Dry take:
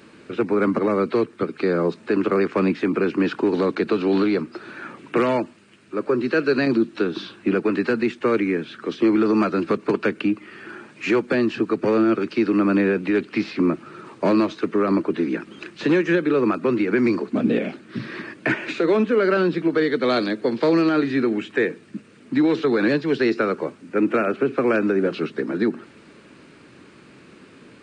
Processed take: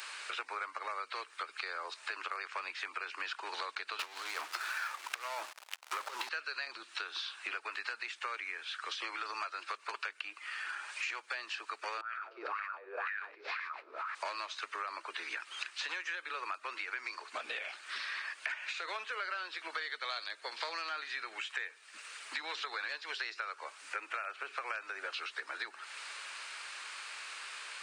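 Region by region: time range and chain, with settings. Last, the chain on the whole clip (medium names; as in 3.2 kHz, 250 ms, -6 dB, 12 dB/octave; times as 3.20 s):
3.99–6.29 s: compressor with a negative ratio -25 dBFS, ratio -0.5 + hysteresis with a dead band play -38 dBFS + waveshaping leveller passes 3
12.01–14.15 s: backward echo that repeats 119 ms, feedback 65%, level -8 dB + wah-wah 2 Hz 380–1800 Hz, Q 6.3 + decay stretcher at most 22 dB/s
whole clip: high-pass 840 Hz 24 dB/octave; treble shelf 2.7 kHz +9 dB; compression 6:1, threshold -43 dBFS; trim +5 dB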